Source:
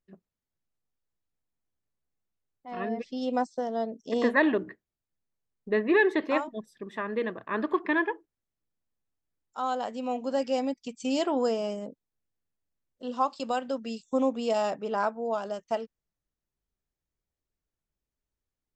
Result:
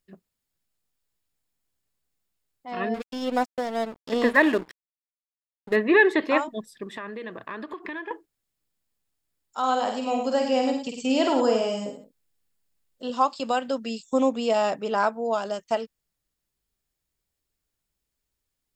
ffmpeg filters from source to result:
-filter_complex "[0:a]asettb=1/sr,asplit=3[s0][s1][s2];[s0]atrim=end=2.944[s3];[s1]atrim=start=2.94:end=5.76,asetpts=PTS-STARTPTS,afade=t=in:d=0.004:c=qsin,afade=t=out:st=2.816:d=0.004:c=qsin,aeval=exprs='sgn(val(0))*max(abs(val(0))-0.00841,0)':c=same[s4];[s2]atrim=start=5.756[s5];[s3][s4]acrossfade=d=0.004:c1=hsin:c2=qsin[s6];[s6][s5]acrossfade=d=0.004:c1=qsin:c2=hsin,asettb=1/sr,asplit=3[s7][s8][s9];[s7]atrim=end=6.834[s10];[s8]atrim=start=6.83:end=8.11,asetpts=PTS-STARTPTS,afade=t=in:d=0.004:c=qsin,afade=t=out:st=1.276:d=0.004:c=qsin,acompressor=threshold=0.0158:ratio=10:attack=3.2:release=140:knee=1:detection=peak[s11];[s9]atrim=start=8.106[s12];[s10][s11]acrossfade=d=0.004:c1=hsin:c2=qsin[s13];[s13][s12]acrossfade=d=0.004:c1=qsin:c2=hsin,asettb=1/sr,asplit=3[s14][s15][s16];[s14]atrim=end=9.584[s17];[s15]atrim=start=9.58:end=13.1,asetpts=PTS-STARTPTS,afade=t=in:d=0.004:c=qsin,afade=t=out:st=3.516:d=0.004:c=qsin,aecho=1:1:50|97|109|180:0.501|0.282|0.299|0.126,atrim=end_sample=155232[s18];[s16]atrim=start=13.096[s19];[s17][s18]acrossfade=d=0.004:c1=hsin:c2=qsin[s20];[s20][s19]acrossfade=d=0.004:c1=qsin:c2=hsin,acrossover=split=3000[s21][s22];[s22]acompressor=threshold=0.00355:ratio=4:attack=1:release=60[s23];[s21][s23]amix=inputs=2:normalize=0,highshelf=f=2200:g=8.5,bandreject=f=6000:w=12,volume=1.5"

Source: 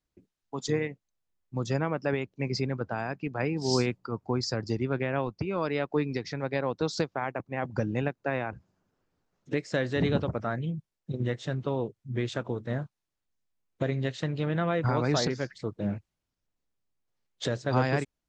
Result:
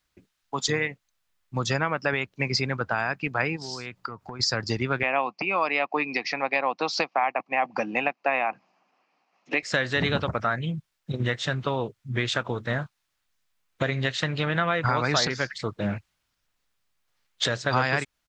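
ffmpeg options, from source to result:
-filter_complex "[0:a]asplit=3[s0][s1][s2];[s0]afade=t=out:st=3.55:d=0.02[s3];[s1]acompressor=threshold=0.0126:ratio=12:attack=3.2:release=140:knee=1:detection=peak,afade=t=in:st=3.55:d=0.02,afade=t=out:st=4.39:d=0.02[s4];[s2]afade=t=in:st=4.39:d=0.02[s5];[s3][s4][s5]amix=inputs=3:normalize=0,asettb=1/sr,asplit=3[s6][s7][s8];[s6]atrim=end=5.034[s9];[s7]atrim=start=5.03:end=9.63,asetpts=PTS-STARTPTS,afade=t=in:d=0.004:c=qsin,afade=t=out:st=4.596:d=0.004:c=qsin,highpass=f=220:w=0.5412,highpass=f=220:w=1.3066,equalizer=f=420:t=q:w=4:g=-4,equalizer=f=750:t=q:w=4:g=9,equalizer=f=1100:t=q:w=4:g=4,equalizer=f=1500:t=q:w=4:g=-10,equalizer=f=2500:t=q:w=4:g=8,equalizer=f=3600:t=q:w=4:g=-9,lowpass=f=5500:w=0.5412,lowpass=f=5500:w=1.3066[s10];[s8]atrim=start=9.626[s11];[s9][s10]acrossfade=d=0.004:c1=hsin:c2=qsin[s12];[s12][s11]acrossfade=d=0.004:c1=qsin:c2=hsin,firequalizer=gain_entry='entry(340,0);entry(610,6);entry(1300,14);entry(3600,14);entry(6300,11)':delay=0.05:min_phase=1,acompressor=threshold=0.0631:ratio=2,lowshelf=f=250:g=4.5"

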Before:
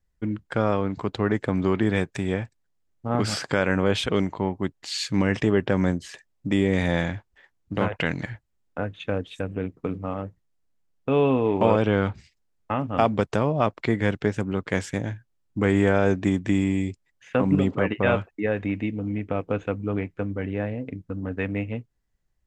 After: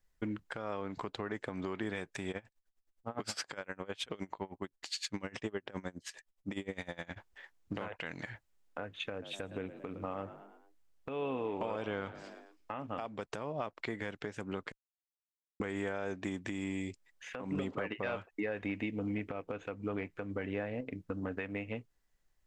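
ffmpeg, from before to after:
-filter_complex "[0:a]asplit=3[s0][s1][s2];[s0]afade=t=out:st=2.31:d=0.02[s3];[s1]aeval=exprs='val(0)*pow(10,-26*(0.5-0.5*cos(2*PI*9.7*n/s))/20)':c=same,afade=t=in:st=2.31:d=0.02,afade=t=out:st=7.16:d=0.02[s4];[s2]afade=t=in:st=7.16:d=0.02[s5];[s3][s4][s5]amix=inputs=3:normalize=0,asettb=1/sr,asplit=3[s6][s7][s8];[s6]atrim=end=9.114[s9];[s7]atrim=start=9.11:end=12.71,asetpts=PTS-STARTPTS,afade=t=in:d=0.004:c=qsin,afade=t=out:st=3.596:d=0.004:c=qsin,asplit=5[s10][s11][s12][s13][s14];[s11]adelay=110,afreqshift=52,volume=0.126[s15];[s12]adelay=220,afreqshift=104,volume=0.0603[s16];[s13]adelay=330,afreqshift=156,volume=0.0288[s17];[s14]adelay=440,afreqshift=208,volume=0.014[s18];[s10][s15][s16][s17][s18]amix=inputs=5:normalize=0,atrim=end_sample=158760[s19];[s8]atrim=start=12.706[s20];[s9][s19]acrossfade=d=0.004:c1=hsin:c2=qsin[s21];[s21][s20]acrossfade=d=0.004:c1=qsin:c2=hsin,asettb=1/sr,asplit=3[s22][s23][s24];[s22]atrim=end=17.554[s25];[s23]atrim=start=17.55:end=20.81,asetpts=PTS-STARTPTS,afade=t=in:d=0.004:c=qsin,afade=t=out:st=3.256:d=0.004:c=qsin,acontrast=61[s26];[s24]atrim=start=20.806[s27];[s25][s26]acrossfade=d=0.004:c1=hsin:c2=qsin[s28];[s28][s27]acrossfade=d=0.004:c1=qsin:c2=hsin,asplit=3[s29][s30][s31];[s29]atrim=end=14.72,asetpts=PTS-STARTPTS,afade=t=out:st=14.716:d=0.004:c=hsin[s32];[s30]atrim=start=14.72:end=15.6,asetpts=PTS-STARTPTS,volume=0[s33];[s31]atrim=start=15.6,asetpts=PTS-STARTPTS,afade=t=in:d=0.004:c=hsin[s34];[s32][s33][s34]concat=n=3:v=0:a=1,equalizer=f=88:w=0.33:g=-11,acompressor=threshold=0.0158:ratio=6,alimiter=level_in=1.41:limit=0.0631:level=0:latency=1:release=149,volume=0.708,volume=1.33"

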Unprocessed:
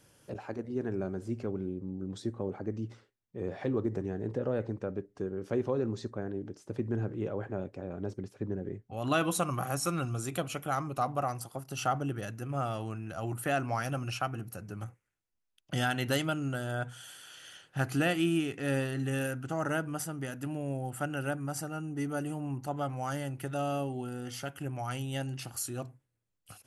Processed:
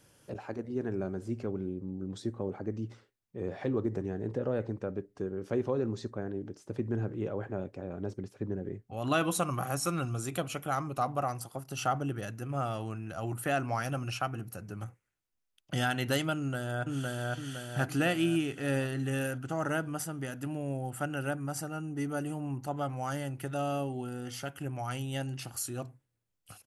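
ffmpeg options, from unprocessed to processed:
-filter_complex "[0:a]asplit=2[s0][s1];[s1]afade=t=in:st=16.35:d=0.01,afade=t=out:st=17.33:d=0.01,aecho=0:1:510|1020|1530|2040|2550|3060|3570:0.944061|0.47203|0.236015|0.118008|0.0590038|0.0295019|0.014751[s2];[s0][s2]amix=inputs=2:normalize=0"

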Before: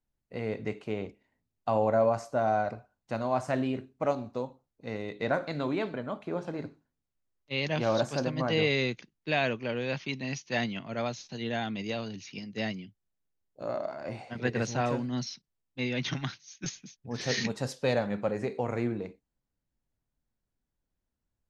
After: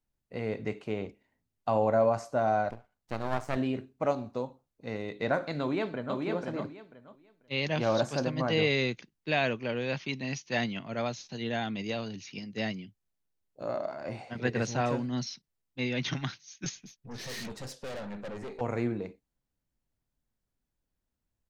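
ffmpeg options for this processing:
-filter_complex "[0:a]asettb=1/sr,asplit=3[s0][s1][s2];[s0]atrim=end=2.704[s3];[s1]atrim=start=2.7:end=3.57,asetpts=PTS-STARTPTS,afade=t=in:d=0.004:c=qsin,afade=t=out:st=0.866:d=0.004:c=qsin,aeval=exprs='max(val(0),0)':c=same[s4];[s2]atrim=start=3.566[s5];[s3][s4]acrossfade=d=0.004:c1=hsin:c2=qsin[s6];[s6][s5]acrossfade=d=0.004:c1=qsin:c2=hsin,asplit=2[s7][s8];[s8]afade=t=in:st=5.6:d=0.01,afade=t=out:st=6.17:d=0.01,aecho=0:1:490|980|1470:0.668344|0.133669|0.0267338[s9];[s7][s9]amix=inputs=2:normalize=0,asettb=1/sr,asplit=3[s10][s11][s12];[s10]atrim=end=16.804[s13];[s11]atrim=start=16.8:end=18.61,asetpts=PTS-STARTPTS,afade=t=in:d=0.004:c=qsin,afade=t=out:st=1.806:d=0.004:c=qsin,aeval=exprs='(tanh(70.8*val(0)+0.4)-tanh(0.4))/70.8':c=same[s14];[s12]atrim=start=18.606[s15];[s13][s14]acrossfade=d=0.004:c1=hsin:c2=qsin[s16];[s16][s15]acrossfade=d=0.004:c1=qsin:c2=hsin"

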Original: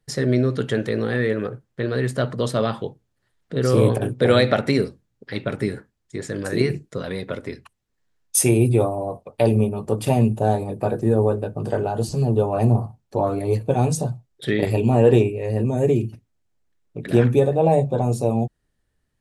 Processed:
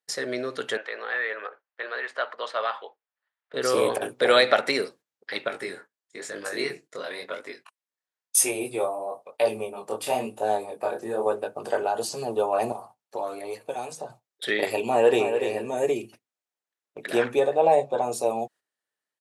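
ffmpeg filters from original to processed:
-filter_complex "[0:a]asettb=1/sr,asplit=3[s0][s1][s2];[s0]atrim=end=0.774[s3];[s1]atrim=start=0.77:end=3.54,asetpts=PTS-STARTPTS,afade=t=in:d=0.004:c=qsin,afade=t=out:st=2.766:d=0.004:c=qsin,highpass=770,lowpass=2600[s4];[s2]atrim=start=3.536[s5];[s3][s4]acrossfade=d=0.004:c1=hsin:c2=qsin[s6];[s6][s5]acrossfade=d=0.004:c1=qsin:c2=hsin,asettb=1/sr,asplit=3[s7][s8][s9];[s7]atrim=end=5.484[s10];[s8]atrim=start=5.48:end=11.26,asetpts=PTS-STARTPTS,afade=t=in:d=0.004:c=qsin,afade=t=out:st=5.776:d=0.004:c=qsin,flanger=delay=19:depth=7.3:speed=1[s11];[s9]atrim=start=11.256[s12];[s10][s11]acrossfade=d=0.004:c1=hsin:c2=qsin[s13];[s13][s12]acrossfade=d=0.004:c1=qsin:c2=hsin,asettb=1/sr,asplit=3[s14][s15][s16];[s14]atrim=end=12.724[s17];[s15]atrim=start=12.72:end=14.1,asetpts=PTS-STARTPTS,afade=t=in:d=0.004:c=qsin,afade=t=out:st=1.376:d=0.004:c=qsin,acrossover=split=600|2200|6600[s18][s19][s20][s21];[s18]acompressor=threshold=0.0316:ratio=3[s22];[s19]acompressor=threshold=0.0141:ratio=3[s23];[s20]acompressor=threshold=0.002:ratio=3[s24];[s21]acompressor=threshold=0.00158:ratio=3[s25];[s22][s23][s24][s25]amix=inputs=4:normalize=0[s26];[s16]atrim=start=14.096[s27];[s17][s26]acrossfade=d=0.004:c1=hsin:c2=qsin[s28];[s28][s27]acrossfade=d=0.004:c1=qsin:c2=hsin,asplit=2[s29][s30];[s30]afade=t=in:st=14.89:d=0.01,afade=t=out:st=15.36:d=0.01,aecho=0:1:290|580:0.421697|0.0632545[s31];[s29][s31]amix=inputs=2:normalize=0,asettb=1/sr,asplit=3[s32][s33][s34];[s32]atrim=end=17.224[s35];[s33]atrim=start=17.22:end=18.12,asetpts=PTS-STARTPTS,afade=t=in:d=0.004:c=qsin,afade=t=out:st=0.896:d=0.004:c=qsin,highshelf=f=8600:g=-10.5[s36];[s34]atrim=start=18.116[s37];[s35][s36]acrossfade=d=0.004:c1=hsin:c2=qsin[s38];[s38][s37]acrossfade=d=0.004:c1=qsin:c2=hsin,highpass=630,agate=range=0.316:threshold=0.00282:ratio=16:detection=peak,dynaudnorm=f=240:g=7:m=1.41"

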